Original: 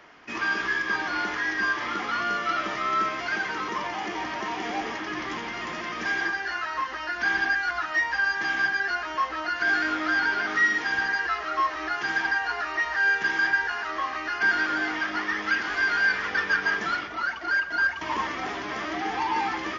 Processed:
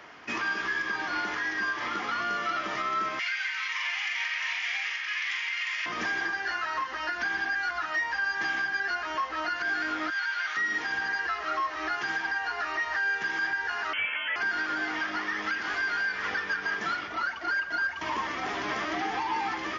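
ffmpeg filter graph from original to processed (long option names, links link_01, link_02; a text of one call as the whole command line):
ffmpeg -i in.wav -filter_complex "[0:a]asettb=1/sr,asplit=3[link_01][link_02][link_03];[link_01]atrim=end=3.194[link_04];[link_02]atrim=start=3.19:end=5.86,asetpts=PTS-STARTPTS,afade=type=in:duration=0.004:curve=qsin,afade=type=out:start_time=2.666:duration=0.004:curve=qsin,highpass=frequency=2200:width_type=q:width=2.7,asplit=2[link_05][link_06];[link_06]adelay=43,volume=-4dB[link_07];[link_05][link_07]amix=inputs=2:normalize=0,atrim=end_sample=117747[link_08];[link_03]atrim=start=5.856[link_09];[link_04][link_08]acrossfade=duration=0.004:curve1=hsin:curve2=qsin[link_10];[link_10][link_09]acrossfade=duration=0.004:curve1=qsin:curve2=hsin,asettb=1/sr,asplit=3[link_11][link_12][link_13];[link_11]atrim=end=10.104[link_14];[link_12]atrim=start=10.1:end=10.57,asetpts=PTS-STARTPTS,afade=type=in:duration=0.004:curve=qsin,afade=type=out:start_time=0.466:duration=0.004:curve=qsin,highpass=1500,bandreject=frequency=5100:width=11[link_15];[link_13]atrim=start=10.566[link_16];[link_14][link_15]acrossfade=duration=0.004:curve1=hsin:curve2=qsin[link_17];[link_17][link_16]acrossfade=duration=0.004:curve1=qsin:curve2=hsin,asettb=1/sr,asplit=3[link_18][link_19][link_20];[link_18]atrim=end=13.934[link_21];[link_19]atrim=start=13.93:end=14.36,asetpts=PTS-STARTPTS,afade=type=in:duration=0.004:curve=qsin,afade=type=out:start_time=0.426:duration=0.004:curve=qsin,lowshelf=frequency=260:gain=9.5,aeval=exprs='0.0794*(abs(mod(val(0)/0.0794+3,4)-2)-1)':channel_layout=same,lowpass=frequency=2900:width_type=q:width=0.5098,lowpass=frequency=2900:width_type=q:width=0.6013,lowpass=frequency=2900:width_type=q:width=0.9,lowpass=frequency=2900:width_type=q:width=2.563,afreqshift=-3400[link_22];[link_20]atrim=start=14.356[link_23];[link_21][link_22]acrossfade=duration=0.004:curve1=hsin:curve2=qsin[link_24];[link_24][link_23]acrossfade=duration=0.004:curve1=qsin:curve2=hsin,highpass=62,equalizer=frequency=280:width_type=o:width=1.9:gain=-2,alimiter=level_in=1dB:limit=-24dB:level=0:latency=1:release=366,volume=-1dB,volume=3.5dB" out.wav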